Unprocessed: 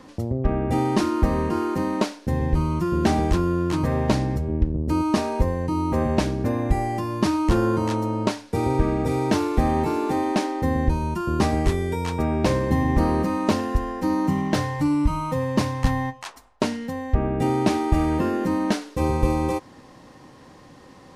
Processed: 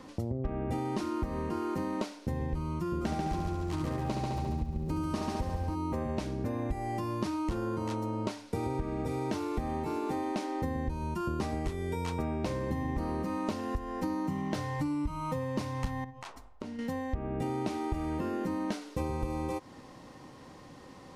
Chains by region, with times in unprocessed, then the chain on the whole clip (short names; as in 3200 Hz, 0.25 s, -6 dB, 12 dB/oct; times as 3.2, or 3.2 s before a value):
3–5.74 multi-head echo 70 ms, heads first and second, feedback 60%, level -6 dB + crackle 550/s -46 dBFS
16.04–16.79 tilt -2 dB/oct + compressor, threshold -35 dBFS
whole clip: notch 1700 Hz, Q 17; compressor, threshold -27 dBFS; gain -3 dB